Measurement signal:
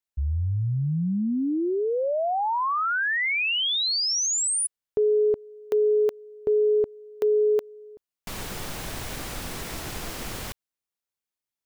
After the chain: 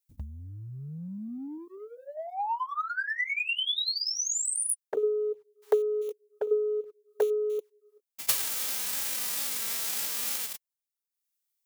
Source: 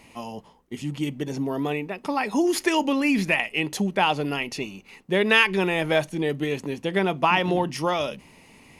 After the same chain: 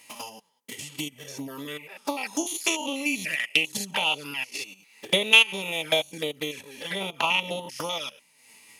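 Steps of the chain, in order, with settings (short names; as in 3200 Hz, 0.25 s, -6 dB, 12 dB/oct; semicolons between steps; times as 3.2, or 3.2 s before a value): stepped spectrum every 0.1 s; transient shaper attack +12 dB, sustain -9 dB; envelope flanger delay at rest 10.9 ms, full sweep at -20 dBFS; tilt +4.5 dB/oct; notch comb 360 Hz; gain -1 dB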